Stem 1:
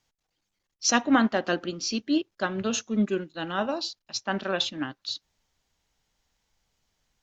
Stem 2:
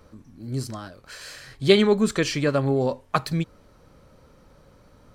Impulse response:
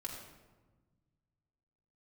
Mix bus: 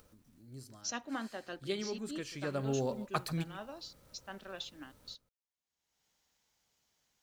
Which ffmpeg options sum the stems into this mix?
-filter_complex "[0:a]highpass=f=170:p=1,agate=range=0.158:threshold=0.01:ratio=16:detection=peak,volume=0.133[s0];[1:a]bandreject=f=1100:w=23,acrusher=bits=9:mix=0:aa=0.000001,volume=0.282,afade=t=in:st=2.28:d=0.51:silence=0.316228,asplit=2[s1][s2];[s2]volume=0.168,aecho=0:1:140:1[s3];[s0][s1][s3]amix=inputs=3:normalize=0,acompressor=mode=upward:threshold=0.00158:ratio=2.5,highshelf=f=6800:g=7.5"

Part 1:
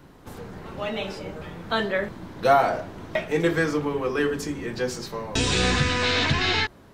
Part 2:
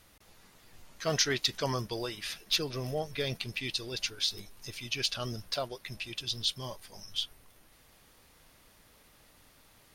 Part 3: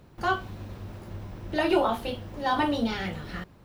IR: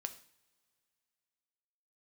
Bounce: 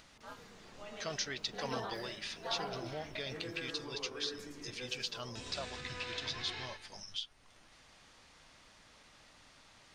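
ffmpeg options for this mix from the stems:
-filter_complex "[0:a]alimiter=limit=0.15:level=0:latency=1:release=58,volume=0.106,asplit=2[s0][s1];[s1]volume=0.596[s2];[1:a]lowpass=f=7500:w=0.5412,lowpass=f=7500:w=1.3066,equalizer=f=420:t=o:w=0.77:g=-4.5,acompressor=threshold=0.00447:ratio=2,volume=1.33[s3];[2:a]aeval=exprs='val(0)*sin(2*PI*110*n/s)':c=same,volume=0.2,afade=t=in:st=0.95:d=0.43:silence=0.421697[s4];[s2]aecho=0:1:111|222|333|444|555:1|0.39|0.152|0.0593|0.0231[s5];[s0][s3][s4][s5]amix=inputs=4:normalize=0,lowshelf=f=210:g=-7,acompressor=mode=upward:threshold=0.00112:ratio=2.5"

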